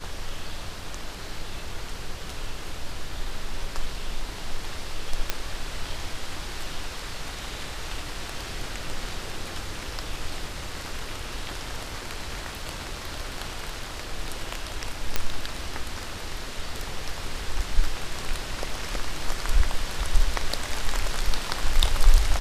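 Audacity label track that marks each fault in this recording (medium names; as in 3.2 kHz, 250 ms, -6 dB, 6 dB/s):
5.300000	5.300000	pop -8 dBFS
15.160000	15.160000	pop -7 dBFS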